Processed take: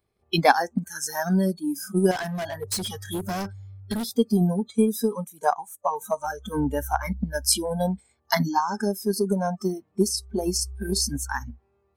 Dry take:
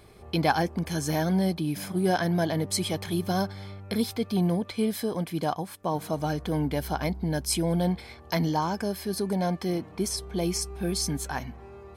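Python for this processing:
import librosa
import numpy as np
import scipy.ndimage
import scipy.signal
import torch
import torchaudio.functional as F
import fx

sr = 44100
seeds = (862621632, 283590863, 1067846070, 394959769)

y = fx.noise_reduce_blind(x, sr, reduce_db=28)
y = fx.clip_hard(y, sr, threshold_db=-31.0, at=(2.11, 4.05))
y = fx.transient(y, sr, attack_db=6, sustain_db=1)
y = y * librosa.db_to_amplitude(3.5)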